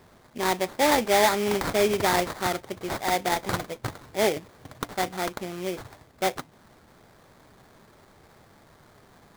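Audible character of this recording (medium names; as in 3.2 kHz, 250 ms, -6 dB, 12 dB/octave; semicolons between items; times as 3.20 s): aliases and images of a low sample rate 2.8 kHz, jitter 20%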